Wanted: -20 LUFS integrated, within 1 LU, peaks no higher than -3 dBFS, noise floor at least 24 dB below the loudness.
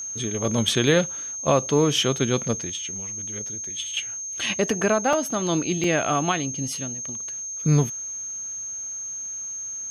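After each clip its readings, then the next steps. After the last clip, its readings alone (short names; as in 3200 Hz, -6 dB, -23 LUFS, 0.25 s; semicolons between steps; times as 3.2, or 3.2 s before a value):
dropouts 2; longest dropout 2.8 ms; steady tone 6400 Hz; tone level -30 dBFS; loudness -24.5 LUFS; peak -7.0 dBFS; loudness target -20.0 LUFS
-> interpolate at 5.13/5.84, 2.8 ms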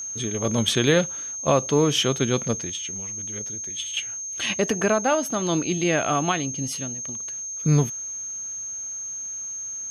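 dropouts 0; steady tone 6400 Hz; tone level -30 dBFS
-> notch 6400 Hz, Q 30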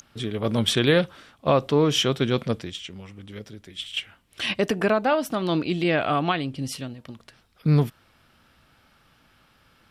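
steady tone none; loudness -24.0 LUFS; peak -7.5 dBFS; loudness target -20.0 LUFS
-> gain +4 dB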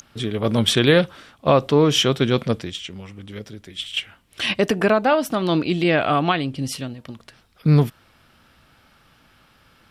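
loudness -20.0 LUFS; peak -3.5 dBFS; noise floor -57 dBFS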